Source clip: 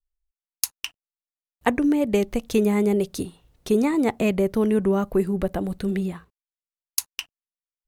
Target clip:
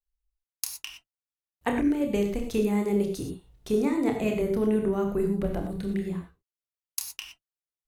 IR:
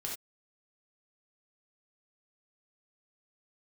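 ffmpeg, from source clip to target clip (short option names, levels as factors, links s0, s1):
-filter_complex "[0:a]asplit=2[s0][s1];[s1]lowshelf=f=210:g=12[s2];[1:a]atrim=start_sample=2205,adelay=28[s3];[s2][s3]afir=irnorm=-1:irlink=0,volume=0.668[s4];[s0][s4]amix=inputs=2:normalize=0,volume=0.422"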